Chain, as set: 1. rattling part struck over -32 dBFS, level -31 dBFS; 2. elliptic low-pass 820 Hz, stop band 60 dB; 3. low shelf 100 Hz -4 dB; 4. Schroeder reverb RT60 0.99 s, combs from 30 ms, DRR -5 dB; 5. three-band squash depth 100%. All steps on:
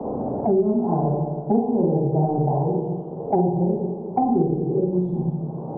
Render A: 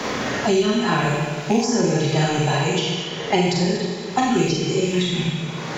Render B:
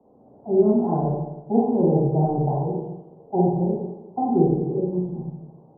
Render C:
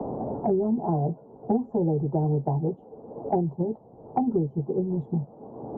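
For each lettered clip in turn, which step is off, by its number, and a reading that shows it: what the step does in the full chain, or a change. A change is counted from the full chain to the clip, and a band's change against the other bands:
2, crest factor change +2.0 dB; 5, crest factor change +4.5 dB; 4, momentary loudness spread change +8 LU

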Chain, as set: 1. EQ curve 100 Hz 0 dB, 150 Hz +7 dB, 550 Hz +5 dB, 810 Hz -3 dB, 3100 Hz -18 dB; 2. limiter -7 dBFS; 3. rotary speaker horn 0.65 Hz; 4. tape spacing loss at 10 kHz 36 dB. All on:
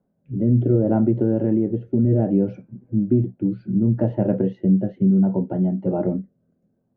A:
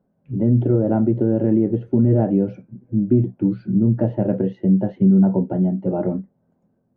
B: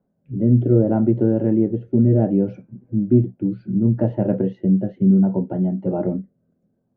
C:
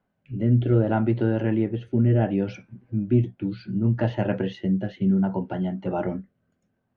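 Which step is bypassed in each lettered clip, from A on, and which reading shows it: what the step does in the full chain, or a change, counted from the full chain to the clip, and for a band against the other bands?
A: 3, loudness change +1.5 LU; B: 2, crest factor change +2.5 dB; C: 1, 1 kHz band +6.0 dB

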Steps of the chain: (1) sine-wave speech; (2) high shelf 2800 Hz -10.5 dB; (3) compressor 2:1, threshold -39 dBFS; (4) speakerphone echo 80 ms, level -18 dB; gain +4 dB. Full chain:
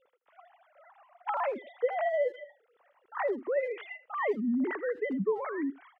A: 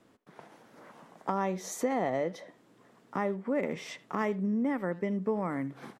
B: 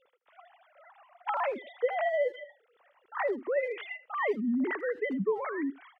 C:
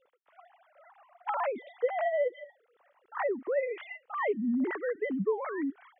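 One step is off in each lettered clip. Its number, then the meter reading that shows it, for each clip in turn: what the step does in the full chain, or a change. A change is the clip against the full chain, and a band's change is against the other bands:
1, 250 Hz band +4.5 dB; 2, 2 kHz band +2.5 dB; 4, echo-to-direct -23.0 dB to none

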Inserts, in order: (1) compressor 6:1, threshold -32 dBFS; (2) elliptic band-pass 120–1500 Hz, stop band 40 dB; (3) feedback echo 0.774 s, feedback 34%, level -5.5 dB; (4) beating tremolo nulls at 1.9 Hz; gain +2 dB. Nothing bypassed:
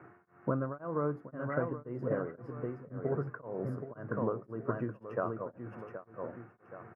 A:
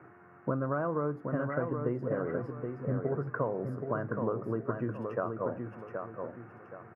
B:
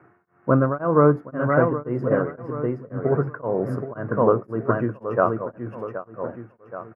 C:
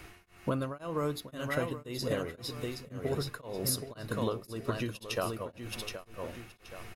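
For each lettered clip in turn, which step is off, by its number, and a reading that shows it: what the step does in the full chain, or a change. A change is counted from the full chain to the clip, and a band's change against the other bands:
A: 4, crest factor change -2.5 dB; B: 1, mean gain reduction 10.0 dB; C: 2, 2 kHz band +4.0 dB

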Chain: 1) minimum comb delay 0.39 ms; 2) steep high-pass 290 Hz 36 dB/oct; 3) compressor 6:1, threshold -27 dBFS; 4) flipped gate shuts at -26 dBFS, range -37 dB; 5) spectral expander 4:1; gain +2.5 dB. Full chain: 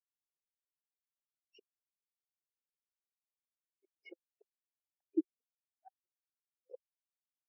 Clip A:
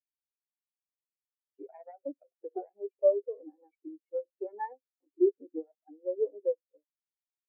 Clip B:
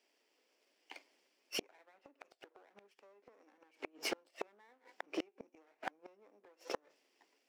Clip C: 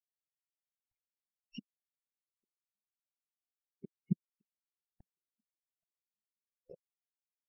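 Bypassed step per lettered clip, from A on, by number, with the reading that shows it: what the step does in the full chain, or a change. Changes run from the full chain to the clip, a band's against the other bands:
4, momentary loudness spread change +2 LU; 5, momentary loudness spread change +3 LU; 2, crest factor change +2.0 dB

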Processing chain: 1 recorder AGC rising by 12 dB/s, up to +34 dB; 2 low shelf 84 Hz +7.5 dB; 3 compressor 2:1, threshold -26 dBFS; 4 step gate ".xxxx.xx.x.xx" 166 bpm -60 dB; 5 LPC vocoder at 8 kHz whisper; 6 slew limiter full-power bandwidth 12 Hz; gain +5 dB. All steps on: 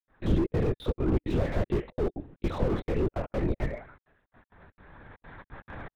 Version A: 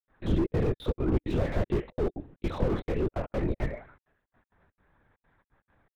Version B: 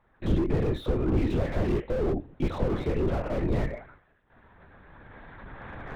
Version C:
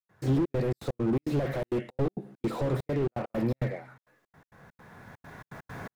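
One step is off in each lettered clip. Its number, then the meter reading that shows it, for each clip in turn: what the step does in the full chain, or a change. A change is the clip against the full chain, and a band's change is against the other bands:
1, momentary loudness spread change -10 LU; 4, crest factor change -1.5 dB; 5, crest factor change -1.5 dB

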